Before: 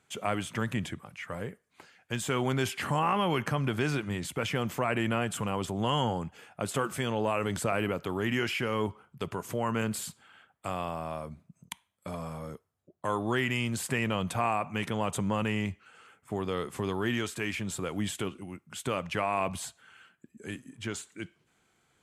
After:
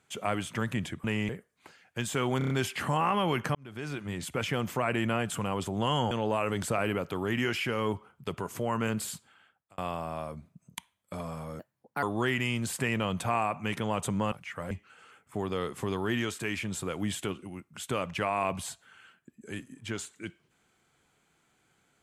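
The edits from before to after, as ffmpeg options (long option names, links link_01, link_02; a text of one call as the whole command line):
ffmpeg -i in.wav -filter_complex "[0:a]asplit=14[link_01][link_02][link_03][link_04][link_05][link_06][link_07][link_08][link_09][link_10][link_11][link_12][link_13][link_14];[link_01]atrim=end=1.042[link_15];[link_02]atrim=start=15.418:end=15.672[link_16];[link_03]atrim=start=1.428:end=2.552[link_17];[link_04]atrim=start=2.518:end=2.552[link_18];[link_05]atrim=start=2.518:end=2.552[link_19];[link_06]atrim=start=2.518:end=2.552[link_20];[link_07]atrim=start=2.518:end=3.57,asetpts=PTS-STARTPTS,afade=type=out:start_time=1.048:duration=0.004:curve=hsin[link_21];[link_08]atrim=start=3.57:end=6.132,asetpts=PTS-STARTPTS,afade=type=in:duration=0.75[link_22];[link_09]atrim=start=7.048:end=10.72,asetpts=PTS-STARTPTS,afade=type=out:start_time=3.012:duration=0.66[link_23];[link_10]atrim=start=10.72:end=12.534,asetpts=PTS-STARTPTS,afade=type=in:duration=0.004:curve=hsin[link_24];[link_11]atrim=start=12.53:end=13.13,asetpts=PTS-STARTPTS,asetrate=60417,aresample=44100[link_25];[link_12]atrim=start=13.126:end=15.422[link_26];[link_13]atrim=start=1.038:end=1.432[link_27];[link_14]atrim=start=15.668[link_28];[link_15][link_16]acrossfade=duration=0.004:curve1=hsin:curve2=hsin[link_29];[link_29][link_17]acrossfade=duration=0.004:curve1=hsin:curve2=hsin[link_30];[link_30][link_18]acrossfade=duration=0.004:curve1=hsin:curve2=hsin[link_31];[link_31][link_19]acrossfade=duration=0.004:curve1=hsin:curve2=hsin[link_32];[link_32][link_20]acrossfade=duration=0.004:curve1=hsin:curve2=hsin[link_33];[link_21][link_22]concat=n=2:v=0:a=1[link_34];[link_33][link_34]acrossfade=duration=0.004:curve1=hsin:curve2=hsin[link_35];[link_23][link_24]concat=n=2:v=0:a=1[link_36];[link_35][link_36]acrossfade=duration=0.004:curve1=hsin:curve2=hsin[link_37];[link_37][link_25]acrossfade=duration=0.004:curve1=hsin:curve2=hsin[link_38];[link_38][link_26]acrossfade=duration=0.004:curve1=hsin:curve2=hsin[link_39];[link_39][link_27]acrossfade=duration=0.004:curve1=hsin:curve2=hsin[link_40];[link_40][link_28]acrossfade=duration=0.004:curve1=hsin:curve2=hsin" out.wav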